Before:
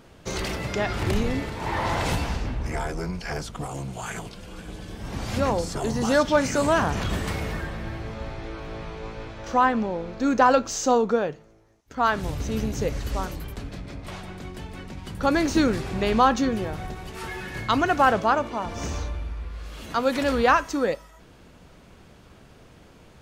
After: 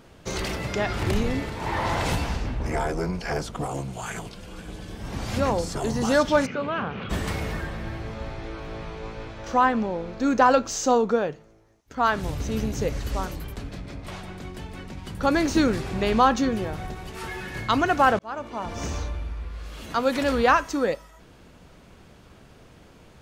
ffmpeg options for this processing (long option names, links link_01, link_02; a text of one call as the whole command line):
ffmpeg -i in.wav -filter_complex "[0:a]asettb=1/sr,asplit=3[link_01][link_02][link_03];[link_01]atrim=end=2.604[link_04];[link_02]atrim=start=2.6:end=3.81,asetpts=PTS-STARTPTS,afade=type=in:duration=0.004:curve=qsin,afade=type=out:start_time=1.206:duration=0.004:curve=qsin,equalizer=frequency=490:width_type=o:width=2.6:gain=5[link_05];[link_03]atrim=start=3.806[link_06];[link_04][link_05]acrossfade=duration=0.004:curve1=hsin:curve2=qsin[link_07];[link_07][link_06]acrossfade=duration=0.004:curve1=qsin:curve2=hsin,asplit=3[link_08][link_09][link_10];[link_08]afade=type=out:start_time=6.45:duration=0.02[link_11];[link_09]highpass=180,equalizer=frequency=310:width_type=q:width=4:gain=-10,equalizer=frequency=660:width_type=q:width=4:gain=-9,equalizer=frequency=940:width_type=q:width=4:gain=-9,equalizer=frequency=1800:width_type=q:width=4:gain=-9,lowpass=frequency=2900:width=0.5412,lowpass=frequency=2900:width=1.3066,afade=type=in:start_time=6.45:duration=0.02,afade=type=out:start_time=7.09:duration=0.02[link_12];[link_10]afade=type=in:start_time=7.09:duration=0.02[link_13];[link_11][link_12][link_13]amix=inputs=3:normalize=0,asplit=2[link_14][link_15];[link_14]atrim=end=18.19,asetpts=PTS-STARTPTS,afade=type=out:start_time=18.186:duration=0.004:curve=hsin[link_16];[link_15]atrim=start=18.19,asetpts=PTS-STARTPTS,afade=type=in:duration=0.53[link_17];[link_16][link_17]concat=n=2:v=0:a=1" out.wav